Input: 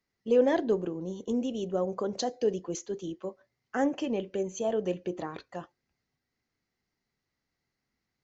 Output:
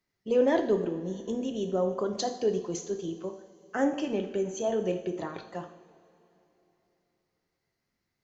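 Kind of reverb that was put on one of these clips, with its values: two-slope reverb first 0.65 s, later 3.5 s, from -18 dB, DRR 5 dB

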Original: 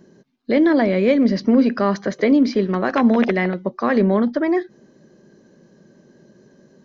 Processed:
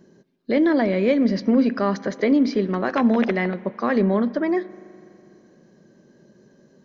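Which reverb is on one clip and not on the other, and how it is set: spring tank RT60 2.7 s, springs 41 ms, chirp 65 ms, DRR 18 dB; gain -3 dB

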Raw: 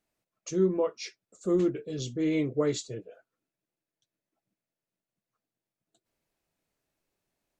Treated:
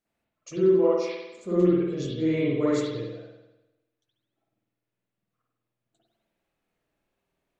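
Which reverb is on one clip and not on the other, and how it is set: spring tank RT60 1 s, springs 50 ms, chirp 45 ms, DRR -9 dB; gain -5 dB

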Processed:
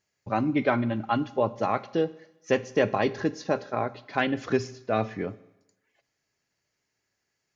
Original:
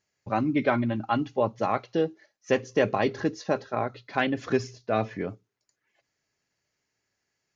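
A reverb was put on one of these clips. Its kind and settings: Schroeder reverb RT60 0.94 s, combs from 32 ms, DRR 17.5 dB

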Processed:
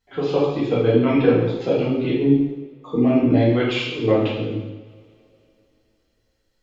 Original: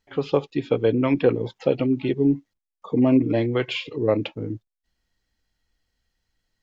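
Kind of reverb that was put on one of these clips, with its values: two-slope reverb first 0.95 s, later 3.4 s, from -26 dB, DRR -8 dB; gain -4.5 dB

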